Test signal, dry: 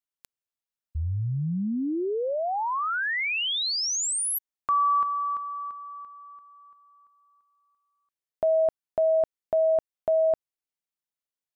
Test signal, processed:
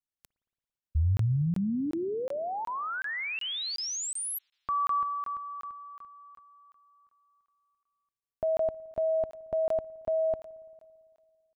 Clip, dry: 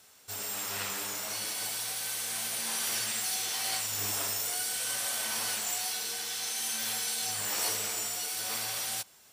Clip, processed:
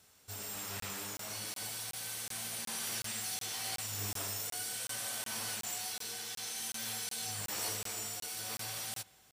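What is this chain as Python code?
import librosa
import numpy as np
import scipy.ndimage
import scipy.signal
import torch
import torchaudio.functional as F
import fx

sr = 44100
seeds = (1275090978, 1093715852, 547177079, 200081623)

y = fx.low_shelf(x, sr, hz=190.0, db=12.0)
y = fx.rev_spring(y, sr, rt60_s=2.2, pass_ms=(56,), chirp_ms=50, drr_db=20.0)
y = fx.buffer_crackle(y, sr, first_s=0.8, period_s=0.37, block=1024, kind='zero')
y = y * 10.0 ** (-6.5 / 20.0)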